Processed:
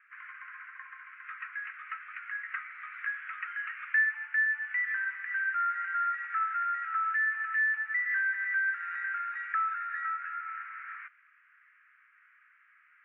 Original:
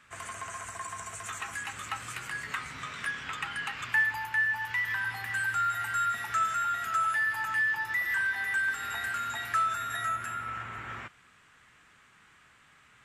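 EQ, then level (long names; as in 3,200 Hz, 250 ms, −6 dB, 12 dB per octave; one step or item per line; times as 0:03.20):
Butterworth high-pass 1,300 Hz 48 dB per octave
Butterworth low-pass 2,300 Hz 48 dB per octave
0.0 dB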